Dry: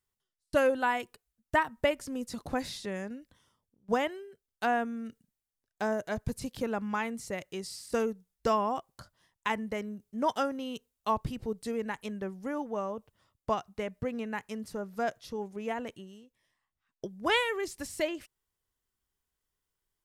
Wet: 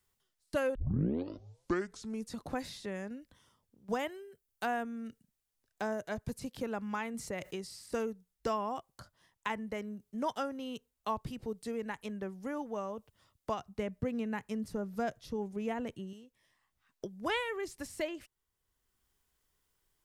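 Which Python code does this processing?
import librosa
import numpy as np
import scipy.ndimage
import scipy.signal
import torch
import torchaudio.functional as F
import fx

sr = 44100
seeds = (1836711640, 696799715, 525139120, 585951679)

y = fx.high_shelf(x, sr, hz=7700.0, db=10.5, at=(3.99, 4.83))
y = fx.env_flatten(y, sr, amount_pct=50, at=(7.14, 7.56))
y = fx.low_shelf(y, sr, hz=350.0, db=9.5, at=(13.59, 16.13))
y = fx.edit(y, sr, fx.tape_start(start_s=0.75, length_s=1.62), tone=tone)
y = fx.band_squash(y, sr, depth_pct=40)
y = y * librosa.db_to_amplitude(-5.0)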